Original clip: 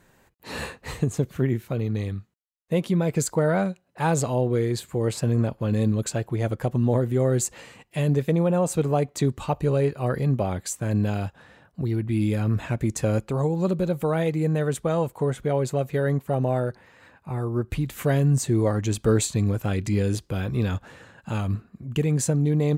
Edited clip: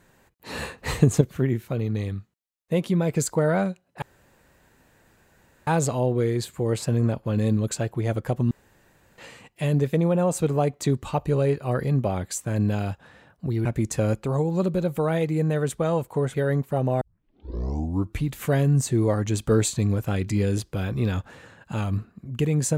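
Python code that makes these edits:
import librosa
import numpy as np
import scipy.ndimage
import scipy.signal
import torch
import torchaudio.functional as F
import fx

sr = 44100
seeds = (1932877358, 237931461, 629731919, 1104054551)

y = fx.edit(x, sr, fx.clip_gain(start_s=0.78, length_s=0.43, db=6.5),
    fx.insert_room_tone(at_s=4.02, length_s=1.65),
    fx.room_tone_fill(start_s=6.86, length_s=0.67),
    fx.cut(start_s=12.0, length_s=0.7),
    fx.cut(start_s=15.39, length_s=0.52),
    fx.tape_start(start_s=16.58, length_s=1.22), tone=tone)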